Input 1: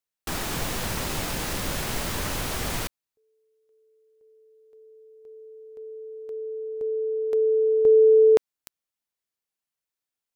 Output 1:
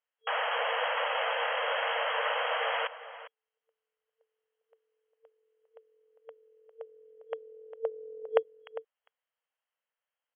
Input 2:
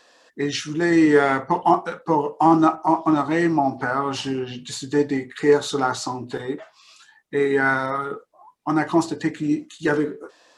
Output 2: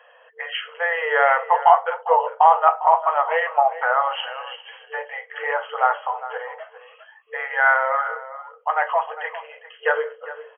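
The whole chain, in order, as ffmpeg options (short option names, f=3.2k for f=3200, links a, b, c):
-filter_complex "[0:a]equalizer=f=2.4k:t=o:w=0.22:g=-5.5,asplit=2[a][b];[b]adelay=402.3,volume=-14dB,highshelf=f=4k:g=-9.05[c];[a][c]amix=inputs=2:normalize=0,afftfilt=real='re*between(b*sr/4096,450,3300)':imag='im*between(b*sr/4096,450,3300)':win_size=4096:overlap=0.75,volume=4.5dB"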